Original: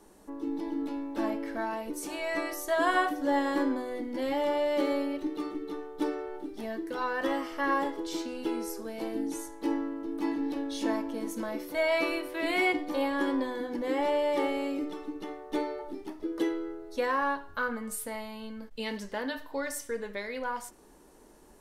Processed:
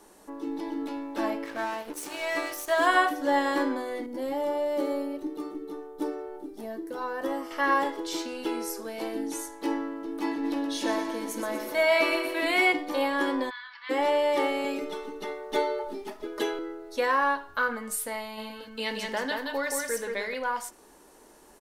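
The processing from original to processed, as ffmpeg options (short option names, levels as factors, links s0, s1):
-filter_complex "[0:a]asettb=1/sr,asplit=3[s0][s1][s2];[s0]atrim=end=1.444[s3];[s1]atrim=start=1.44:end=2.87,asetpts=PTS-STARTPTS,afade=t=in:d=0.004:c=qsin,afade=t=out:st=1.426:d=0.004:c=qsin,aeval=exprs='sgn(val(0))*max(abs(val(0))-0.00668,0)':c=same[s4];[s2]atrim=start=2.866[s5];[s3][s4]acrossfade=d=0.004:c1=hsin:c2=qsin[s6];[s6][s5]acrossfade=d=0.004:c1=qsin:c2=hsin,asettb=1/sr,asplit=3[s7][s8][s9];[s7]atrim=end=4.064[s10];[s8]atrim=start=4.06:end=7.51,asetpts=PTS-STARTPTS,afade=t=in:d=0.004:c=qsin,afade=t=out:st=3.446:d=0.004:c=qsin,equalizer=f=2600:t=o:w=2.7:g=-12.5[s11];[s9]atrim=start=7.506[s12];[s10][s11]acrossfade=d=0.004:c1=hsin:c2=qsin[s13];[s13][s12]acrossfade=d=0.004:c1=qsin:c2=hsin,asplit=3[s14][s15][s16];[s14]afade=t=out:st=10.43:d=0.02[s17];[s15]aecho=1:1:121|242|363|484|605|726|847:0.398|0.219|0.12|0.0662|0.0364|0.02|0.011,afade=t=in:st=10.43:d=0.02,afade=t=out:st=12.45:d=0.02[s18];[s16]afade=t=in:st=12.45:d=0.02[s19];[s17][s18][s19]amix=inputs=3:normalize=0,asplit=3[s20][s21][s22];[s20]afade=t=out:st=13.49:d=0.02[s23];[s21]asuperpass=centerf=2300:order=12:qfactor=0.62,afade=t=in:st=13.49:d=0.02,afade=t=out:st=13.89:d=0.02[s24];[s22]afade=t=in:st=13.89:d=0.02[s25];[s23][s24][s25]amix=inputs=3:normalize=0,asettb=1/sr,asplit=3[s26][s27][s28];[s26]atrim=end=14.644[s29];[s27]atrim=start=14.64:end=16.59,asetpts=PTS-STARTPTS,afade=t=in:d=0.004:c=qsin,afade=t=out:st=1.946:d=0.004:c=qsin,aecho=1:1:4.8:0.91,atrim=end_sample=85995[s30];[s28]atrim=start=16.586[s31];[s29][s30]acrossfade=d=0.004:c1=hsin:c2=qsin[s32];[s32][s31]acrossfade=d=0.004:c1=qsin:c2=hsin,asplit=3[s33][s34][s35];[s33]afade=t=out:st=18.37:d=0.02[s36];[s34]aecho=1:1:175:0.668,afade=t=in:st=18.37:d=0.02,afade=t=out:st=20.33:d=0.02[s37];[s35]afade=t=in:st=20.33:d=0.02[s38];[s36][s37][s38]amix=inputs=3:normalize=0,lowshelf=f=300:g=-11,volume=1.88"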